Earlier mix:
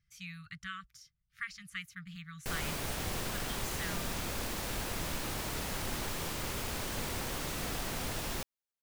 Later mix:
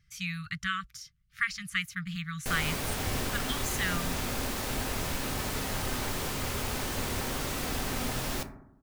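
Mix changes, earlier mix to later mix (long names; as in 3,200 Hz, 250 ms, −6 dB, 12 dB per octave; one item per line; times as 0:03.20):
speech +10.5 dB
reverb: on, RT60 0.80 s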